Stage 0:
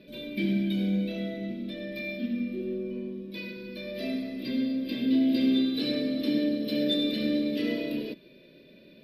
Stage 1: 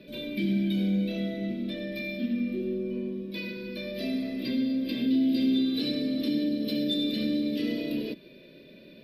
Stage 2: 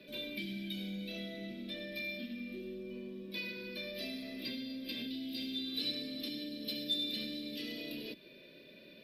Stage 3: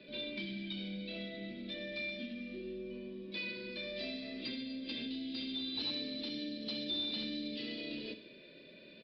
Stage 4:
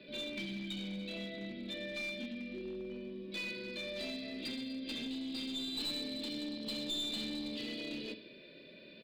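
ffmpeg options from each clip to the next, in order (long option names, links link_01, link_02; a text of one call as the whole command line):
ffmpeg -i in.wav -filter_complex "[0:a]acrossover=split=370|3000[link_01][link_02][link_03];[link_02]acompressor=threshold=-40dB:ratio=6[link_04];[link_01][link_04][link_03]amix=inputs=3:normalize=0,asplit=2[link_05][link_06];[link_06]alimiter=level_in=2dB:limit=-24dB:level=0:latency=1:release=117,volume=-2dB,volume=-1dB[link_07];[link_05][link_07]amix=inputs=2:normalize=0,volume=-2.5dB" out.wav
ffmpeg -i in.wav -filter_complex "[0:a]lowshelf=frequency=490:gain=-9,acrossover=split=120|2500[link_01][link_02][link_03];[link_02]acompressor=threshold=-41dB:ratio=6[link_04];[link_01][link_04][link_03]amix=inputs=3:normalize=0,volume=-1dB" out.wav
ffmpeg -i in.wav -af "aresample=11025,asoftclip=type=hard:threshold=-34dB,aresample=44100,aecho=1:1:64|128|192|256|320|384:0.237|0.13|0.0717|0.0395|0.0217|0.0119" out.wav
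ffmpeg -i in.wav -af "aeval=exprs='clip(val(0),-1,0.0119)':channel_layout=same,volume=1dB" out.wav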